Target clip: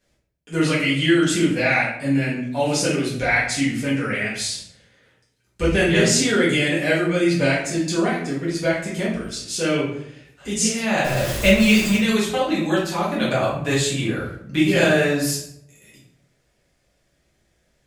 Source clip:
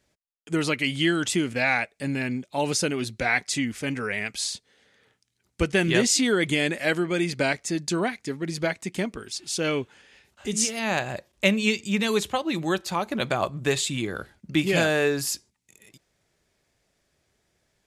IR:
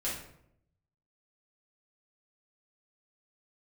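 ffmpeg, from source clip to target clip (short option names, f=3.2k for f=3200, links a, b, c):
-filter_complex "[0:a]asettb=1/sr,asplit=3[a][b][c];[a]atrim=end=11.044[d];[b]atrim=start=11.04:end=11.96,asetpts=PTS-STARTPTS,afade=t=in:d=0.004:c=qsin,afade=t=out:st=0.916:d=0.004:c=qsin,aeval=exprs='val(0)+0.5*0.0596*sgn(val(0))':c=same[e];[c]atrim=start=11.956[f];[d][e]acrossfade=d=0.004:c1=hsin:c2=qsin[g];[g][f]acrossfade=d=0.004:c1=qsin:c2=hsin[h];[1:a]atrim=start_sample=2205[i];[h][i]afir=irnorm=-1:irlink=0"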